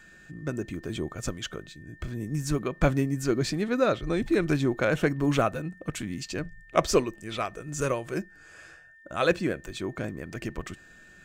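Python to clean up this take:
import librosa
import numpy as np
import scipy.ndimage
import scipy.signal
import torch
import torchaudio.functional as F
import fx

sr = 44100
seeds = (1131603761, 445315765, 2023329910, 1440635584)

y = fx.notch(x, sr, hz=1800.0, q=30.0)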